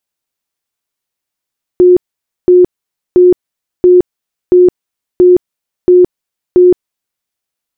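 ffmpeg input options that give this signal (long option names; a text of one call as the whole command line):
ffmpeg -f lavfi -i "aevalsrc='0.841*sin(2*PI*360*mod(t,0.68))*lt(mod(t,0.68),60/360)':duration=5.44:sample_rate=44100" out.wav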